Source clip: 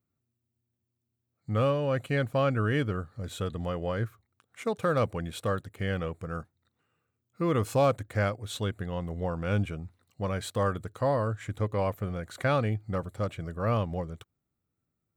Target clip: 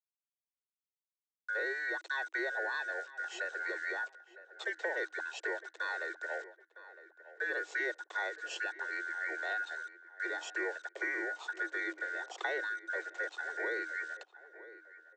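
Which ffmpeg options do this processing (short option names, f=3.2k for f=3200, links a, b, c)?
-filter_complex "[0:a]afftfilt=real='real(if(lt(b,960),b+48*(1-2*mod(floor(b/48),2)),b),0)':imag='imag(if(lt(b,960),b+48*(1-2*mod(floor(b/48),2)),b),0)':win_size=2048:overlap=0.75,aemphasis=mode=reproduction:type=50kf,agate=range=-14dB:threshold=-49dB:ratio=16:detection=peak,equalizer=f=1.5k:t=o:w=2.5:g=-6.5,acompressor=threshold=-40dB:ratio=3,aresample=16000,aeval=exprs='val(0)*gte(abs(val(0)),0.0015)':c=same,aresample=44100,afreqshift=310,asplit=2[a][b];[b]adelay=959,lowpass=f=1.7k:p=1,volume=-14.5dB,asplit=2[c][d];[d]adelay=959,lowpass=f=1.7k:p=1,volume=0.36,asplit=2[e][f];[f]adelay=959,lowpass=f=1.7k:p=1,volume=0.36[g];[c][e][g]amix=inputs=3:normalize=0[h];[a][h]amix=inputs=2:normalize=0,volume=4.5dB"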